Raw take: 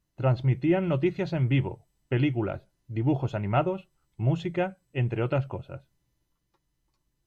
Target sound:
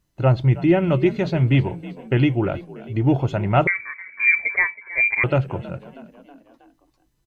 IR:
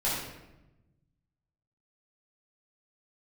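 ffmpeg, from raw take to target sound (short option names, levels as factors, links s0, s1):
-filter_complex "[0:a]asplit=2[s0][s1];[s1]asplit=4[s2][s3][s4][s5];[s2]adelay=320,afreqshift=47,volume=0.126[s6];[s3]adelay=640,afreqshift=94,volume=0.0668[s7];[s4]adelay=960,afreqshift=141,volume=0.0355[s8];[s5]adelay=1280,afreqshift=188,volume=0.0188[s9];[s6][s7][s8][s9]amix=inputs=4:normalize=0[s10];[s0][s10]amix=inputs=2:normalize=0,asettb=1/sr,asplit=3[s11][s12][s13];[s11]atrim=end=3.674[s14];[s12]atrim=start=3.67:end=5.24,asetpts=PTS-STARTPTS,afade=t=in:d=0.004:c=qsin,afade=t=out:st=1.566:d=0.004:c=qsin,lowpass=f=2100:t=q:w=0.5098,lowpass=f=2100:t=q:w=0.6013,lowpass=f=2100:t=q:w=0.9,lowpass=f=2100:t=q:w=2.563,afreqshift=-2500[s15];[s13]atrim=start=5.236[s16];[s14][s15]acrossfade=d=0.004:c1=hsin:c2=qsin[s17];[s17][s16]acrossfade=d=0.004:c1=qsin:c2=hsin,volume=2.24"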